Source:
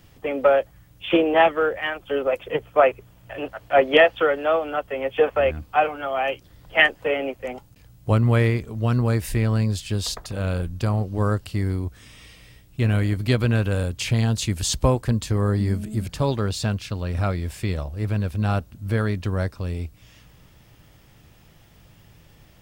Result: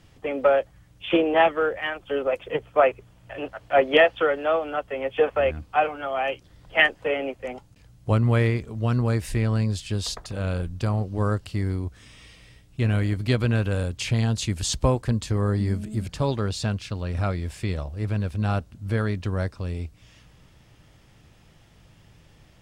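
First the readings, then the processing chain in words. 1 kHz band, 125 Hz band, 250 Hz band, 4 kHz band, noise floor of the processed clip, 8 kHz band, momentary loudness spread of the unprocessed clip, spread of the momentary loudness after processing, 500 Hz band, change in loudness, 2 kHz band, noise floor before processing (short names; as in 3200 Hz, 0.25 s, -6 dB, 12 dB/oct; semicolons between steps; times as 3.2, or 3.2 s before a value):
-2.0 dB, -2.0 dB, -2.0 dB, -2.0 dB, -55 dBFS, -3.0 dB, 11 LU, 11 LU, -2.0 dB, -2.0 dB, -2.0 dB, -53 dBFS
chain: LPF 10000 Hz 12 dB/oct; gain -2 dB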